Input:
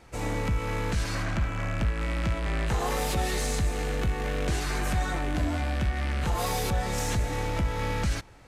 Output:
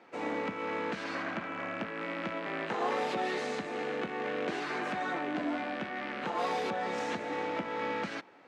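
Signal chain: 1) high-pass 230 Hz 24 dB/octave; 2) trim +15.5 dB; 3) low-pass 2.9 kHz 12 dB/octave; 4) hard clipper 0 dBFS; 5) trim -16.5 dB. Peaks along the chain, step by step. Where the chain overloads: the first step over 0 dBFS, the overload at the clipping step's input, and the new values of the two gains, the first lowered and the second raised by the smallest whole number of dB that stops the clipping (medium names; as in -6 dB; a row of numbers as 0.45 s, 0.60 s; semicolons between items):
-18.5 dBFS, -3.0 dBFS, -3.5 dBFS, -3.5 dBFS, -20.0 dBFS; nothing clips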